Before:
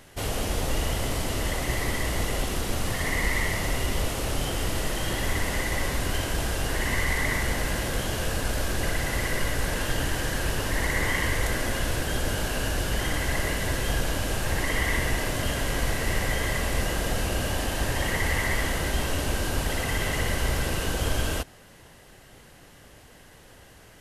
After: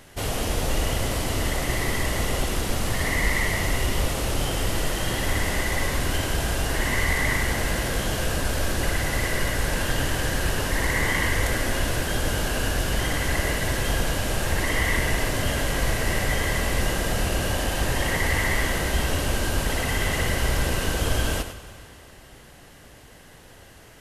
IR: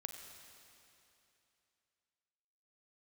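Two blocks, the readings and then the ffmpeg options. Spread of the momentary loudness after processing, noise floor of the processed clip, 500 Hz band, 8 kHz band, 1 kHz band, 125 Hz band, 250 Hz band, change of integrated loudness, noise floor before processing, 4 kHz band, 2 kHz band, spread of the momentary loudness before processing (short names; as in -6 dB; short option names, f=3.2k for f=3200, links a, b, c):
3 LU, -48 dBFS, +2.5 dB, +2.5 dB, +2.5 dB, +2.5 dB, +2.5 dB, +2.5 dB, -51 dBFS, +2.5 dB, +3.0 dB, 3 LU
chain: -filter_complex "[0:a]asplit=2[a][b];[1:a]atrim=start_sample=2205,adelay=100[c];[b][c]afir=irnorm=-1:irlink=0,volume=-6dB[d];[a][d]amix=inputs=2:normalize=0,volume=2dB"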